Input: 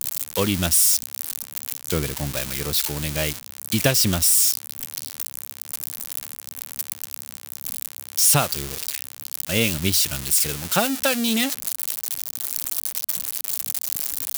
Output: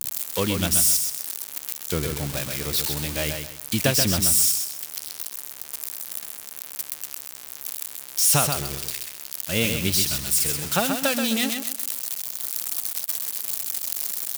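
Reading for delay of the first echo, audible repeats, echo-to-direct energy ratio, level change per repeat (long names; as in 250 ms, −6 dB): 130 ms, 3, −5.5 dB, −11.0 dB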